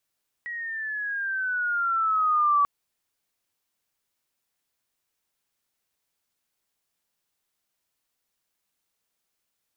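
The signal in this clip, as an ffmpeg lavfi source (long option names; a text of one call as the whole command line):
ffmpeg -f lavfi -i "aevalsrc='pow(10,(-17+14*(t/2.19-1))/20)*sin(2*PI*1920*2.19/(-9*log(2)/12)*(exp(-9*log(2)/12*t/2.19)-1))':duration=2.19:sample_rate=44100" out.wav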